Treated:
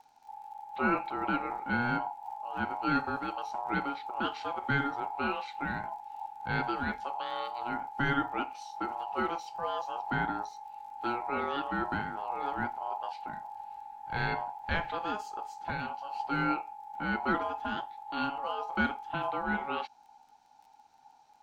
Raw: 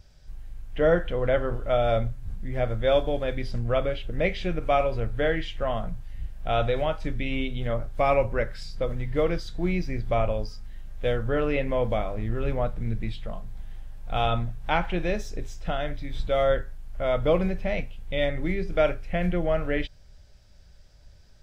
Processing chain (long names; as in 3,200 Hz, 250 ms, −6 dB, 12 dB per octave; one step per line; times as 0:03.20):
parametric band 950 Hz +3.5 dB 1.4 octaves
ring modulation 840 Hz
surface crackle 52 per second −45 dBFS, from 0:13.56 13 per second
level −6.5 dB